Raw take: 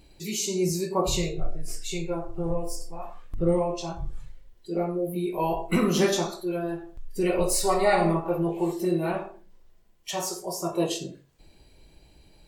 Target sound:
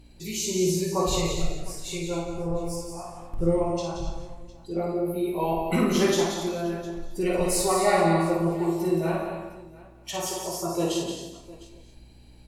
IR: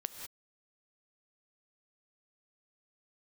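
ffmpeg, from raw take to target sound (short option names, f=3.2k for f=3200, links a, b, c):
-filter_complex "[0:a]aeval=exprs='val(0)+0.00282*(sin(2*PI*60*n/s)+sin(2*PI*2*60*n/s)/2+sin(2*PI*3*60*n/s)/3+sin(2*PI*4*60*n/s)/4+sin(2*PI*5*60*n/s)/5)':c=same,aecho=1:1:54|176|264|707:0.596|0.422|0.119|0.106[a];[1:a]atrim=start_sample=2205,afade=t=out:st=0.21:d=0.01,atrim=end_sample=9702,asetrate=26460,aresample=44100[b];[a][b]afir=irnorm=-1:irlink=0,volume=-2.5dB"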